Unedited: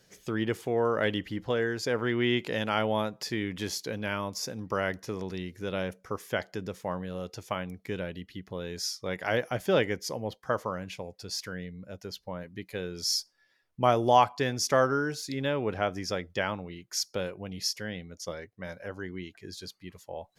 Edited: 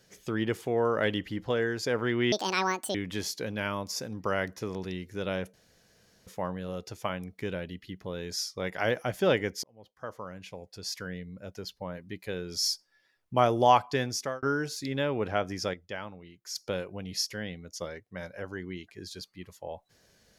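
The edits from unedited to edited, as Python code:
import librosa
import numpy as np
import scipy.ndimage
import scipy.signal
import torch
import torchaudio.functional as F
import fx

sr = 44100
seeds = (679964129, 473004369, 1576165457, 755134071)

y = fx.edit(x, sr, fx.speed_span(start_s=2.32, length_s=1.09, speed=1.74),
    fx.room_tone_fill(start_s=6.0, length_s=0.73),
    fx.fade_in_span(start_s=10.1, length_s=1.44),
    fx.fade_out_span(start_s=14.49, length_s=0.4),
    fx.clip_gain(start_s=16.2, length_s=0.82, db=-8.0), tone=tone)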